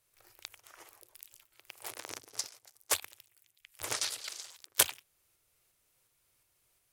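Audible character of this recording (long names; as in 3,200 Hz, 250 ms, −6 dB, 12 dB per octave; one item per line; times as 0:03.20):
tremolo saw up 2.8 Hz, depth 30%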